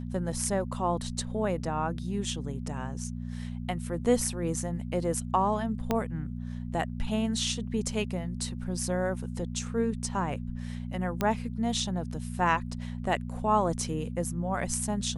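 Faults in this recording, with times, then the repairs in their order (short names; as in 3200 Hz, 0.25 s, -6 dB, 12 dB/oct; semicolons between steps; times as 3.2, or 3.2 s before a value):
hum 60 Hz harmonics 4 -36 dBFS
5.91 pop -13 dBFS
11.21 pop -14 dBFS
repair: de-click; de-hum 60 Hz, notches 4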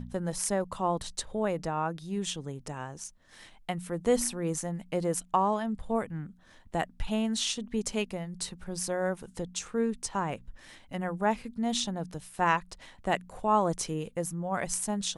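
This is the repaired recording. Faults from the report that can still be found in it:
5.91 pop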